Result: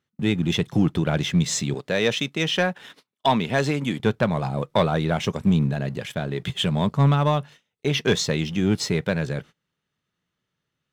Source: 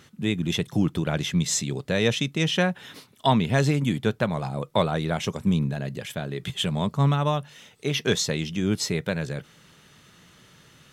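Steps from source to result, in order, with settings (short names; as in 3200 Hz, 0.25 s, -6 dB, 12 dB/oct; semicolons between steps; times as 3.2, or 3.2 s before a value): 1.74–4 HPF 330 Hz 6 dB/oct; gate -43 dBFS, range -24 dB; high shelf 7100 Hz -10.5 dB; sample leveller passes 1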